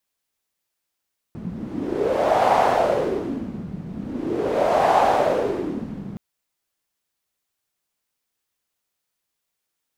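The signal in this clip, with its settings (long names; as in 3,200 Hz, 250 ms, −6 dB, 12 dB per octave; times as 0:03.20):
wind from filtered noise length 4.82 s, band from 180 Hz, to 760 Hz, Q 4.2, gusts 2, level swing 15 dB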